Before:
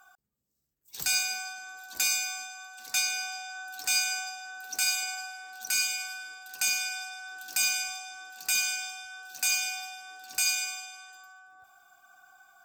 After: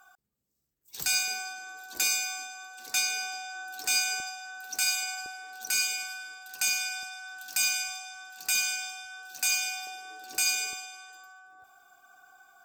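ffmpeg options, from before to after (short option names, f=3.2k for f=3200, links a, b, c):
-af "asetnsamples=n=441:p=0,asendcmd='1.28 equalizer g 8.5;4.2 equalizer g 0;5.26 equalizer g 7;6.03 equalizer g 0.5;7.03 equalizer g -6.5;8.4 equalizer g 2;9.87 equalizer g 14;10.73 equalizer g 7',equalizer=f=380:t=o:w=1:g=2"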